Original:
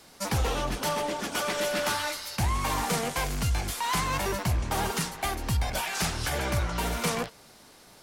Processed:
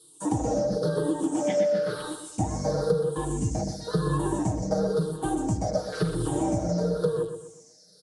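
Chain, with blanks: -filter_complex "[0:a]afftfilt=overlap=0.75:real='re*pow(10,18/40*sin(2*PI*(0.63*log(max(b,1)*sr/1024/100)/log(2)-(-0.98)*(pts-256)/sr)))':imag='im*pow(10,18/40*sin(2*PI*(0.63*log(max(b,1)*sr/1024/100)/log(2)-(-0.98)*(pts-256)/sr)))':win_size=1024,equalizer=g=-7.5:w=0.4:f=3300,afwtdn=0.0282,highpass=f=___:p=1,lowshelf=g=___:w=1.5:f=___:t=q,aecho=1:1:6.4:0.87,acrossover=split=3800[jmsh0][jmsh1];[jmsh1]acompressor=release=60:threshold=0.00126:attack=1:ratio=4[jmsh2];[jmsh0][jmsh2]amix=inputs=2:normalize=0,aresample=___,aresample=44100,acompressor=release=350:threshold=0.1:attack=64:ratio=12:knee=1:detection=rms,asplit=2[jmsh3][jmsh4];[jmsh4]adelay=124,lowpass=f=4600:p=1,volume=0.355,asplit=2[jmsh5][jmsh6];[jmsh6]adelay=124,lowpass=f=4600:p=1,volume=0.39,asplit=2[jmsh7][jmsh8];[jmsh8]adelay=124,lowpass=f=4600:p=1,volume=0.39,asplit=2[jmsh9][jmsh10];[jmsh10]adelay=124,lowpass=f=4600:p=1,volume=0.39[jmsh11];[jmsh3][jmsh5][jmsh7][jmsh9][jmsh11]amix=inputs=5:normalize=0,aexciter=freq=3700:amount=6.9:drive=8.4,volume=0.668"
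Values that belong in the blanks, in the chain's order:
220, 9.5, 670, 22050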